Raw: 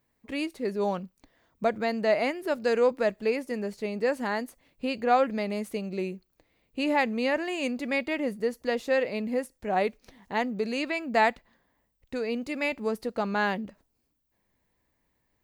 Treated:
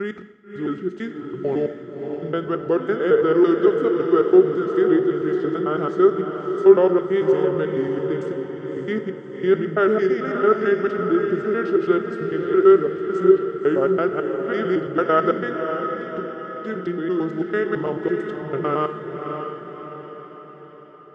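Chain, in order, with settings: slices played last to first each 81 ms, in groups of 5; high-pass 97 Hz; bass shelf 160 Hz -5 dB; tape speed -27%; distance through air 120 m; small resonant body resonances 390/1300 Hz, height 14 dB, ringing for 35 ms; on a send: echo that smears into a reverb 588 ms, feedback 52%, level -6 dB; on the sum: plate-style reverb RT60 0.95 s, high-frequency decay 0.95×, DRR 9.5 dB

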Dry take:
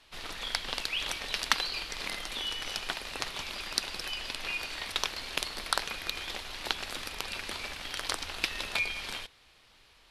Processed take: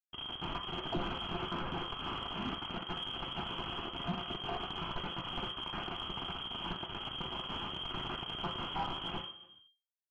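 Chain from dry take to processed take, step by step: in parallel at -2 dB: compression 4:1, threshold -43 dBFS, peak gain reduction 19.5 dB; on the sum: inharmonic resonator 76 Hz, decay 0.2 s, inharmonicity 0.002; Schmitt trigger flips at -38 dBFS; frequency inversion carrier 3.2 kHz; reverberation RT60 0.55 s, pre-delay 3 ms, DRR 2.5 dB; saturation -27 dBFS, distortion -20 dB; reverse; upward compressor, threshold -50 dBFS; reverse

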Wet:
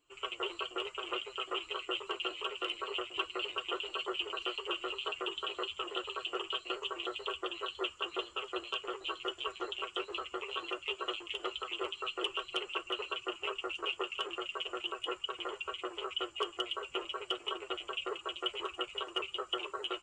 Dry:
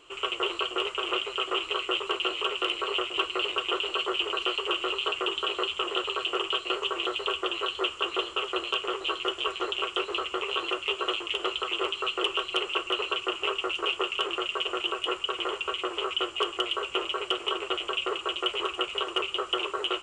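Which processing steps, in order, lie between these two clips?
expander on every frequency bin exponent 1.5; trim -5 dB

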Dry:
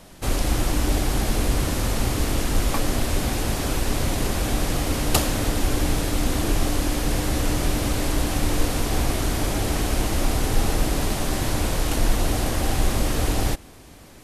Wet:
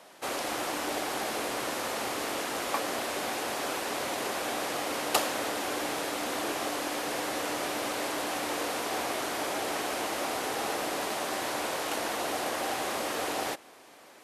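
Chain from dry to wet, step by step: high-pass 530 Hz 12 dB/octave; treble shelf 3.2 kHz -8 dB

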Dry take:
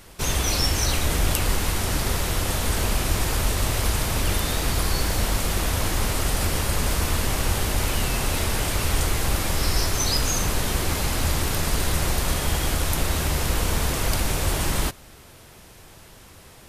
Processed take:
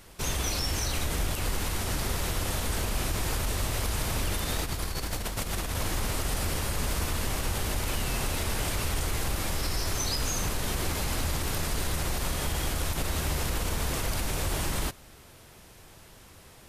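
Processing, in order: peak limiter -15 dBFS, peak gain reduction 9.5 dB; 4.56–5.75 s: compressor with a negative ratio -26 dBFS, ratio -0.5; trim -4.5 dB

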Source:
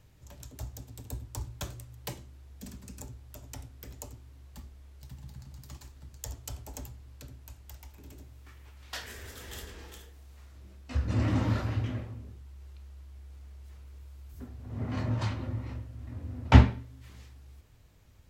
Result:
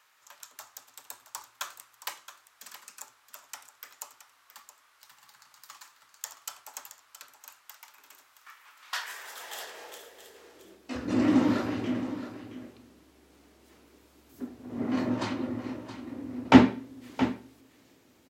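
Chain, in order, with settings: delay 671 ms -12 dB; high-pass sweep 1.2 kHz -> 280 Hz, 8.79–11.05 s; trim +3.5 dB

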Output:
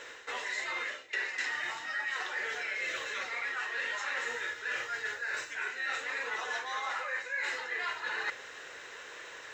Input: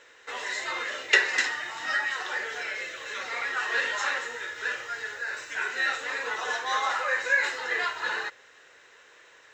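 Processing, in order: dynamic bell 2.2 kHz, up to +5 dB, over -40 dBFS, Q 2.5; reverse; compression 10:1, threshold -41 dBFS, peak gain reduction 28.5 dB; reverse; trim +8 dB

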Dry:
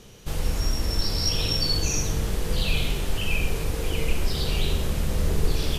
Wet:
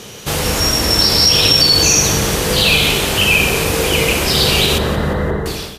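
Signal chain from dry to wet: fade out at the end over 0.67 s; high-pass 84 Hz 12 dB/octave; bass shelf 360 Hz -7 dB; 4.78–5.46 s: brick-wall FIR low-pass 2.1 kHz; feedback delay 175 ms, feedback 45%, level -13 dB; loudness maximiser +19 dB; trim -1 dB

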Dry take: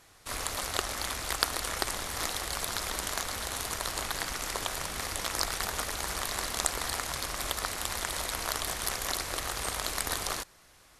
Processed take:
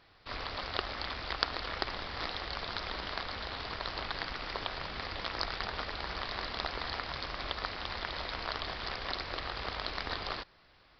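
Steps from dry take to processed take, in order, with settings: resampled via 11.025 kHz; trim -2.5 dB

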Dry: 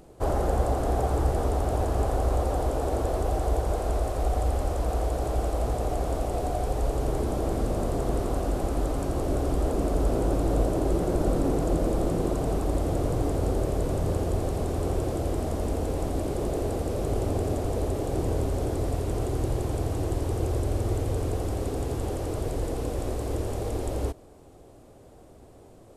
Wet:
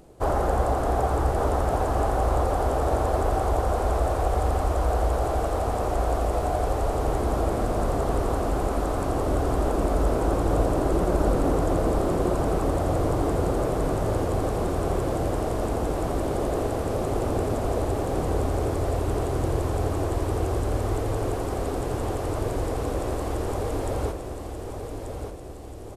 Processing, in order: on a send: feedback delay 1186 ms, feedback 58%, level -7 dB; on the sum: dynamic bell 1.2 kHz, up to +7 dB, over -46 dBFS, Q 0.82

